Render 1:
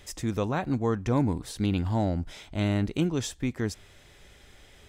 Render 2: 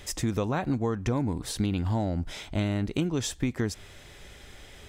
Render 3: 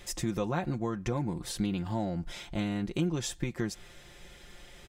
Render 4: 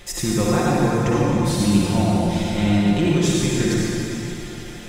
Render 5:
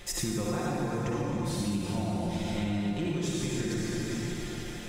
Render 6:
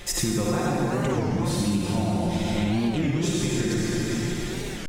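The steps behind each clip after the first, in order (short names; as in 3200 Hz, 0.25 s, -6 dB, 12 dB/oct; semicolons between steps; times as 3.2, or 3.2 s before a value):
compressor, threshold -29 dBFS, peak gain reduction 10 dB; gain +5.5 dB
comb 5.7 ms, depth 62%; gain -4.5 dB
reverb RT60 3.3 s, pre-delay 51 ms, DRR -5.5 dB; gain +7 dB
compressor 6:1, threshold -24 dBFS, peak gain reduction 12 dB; gain -4 dB
record warp 33 1/3 rpm, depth 250 cents; gain +6.5 dB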